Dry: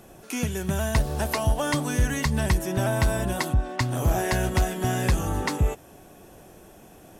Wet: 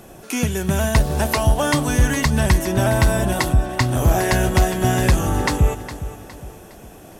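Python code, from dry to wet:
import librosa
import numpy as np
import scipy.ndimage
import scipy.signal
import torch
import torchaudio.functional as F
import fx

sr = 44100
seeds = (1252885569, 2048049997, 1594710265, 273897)

y = fx.echo_feedback(x, sr, ms=411, feedback_pct=41, wet_db=-13.5)
y = y * 10.0 ** (6.5 / 20.0)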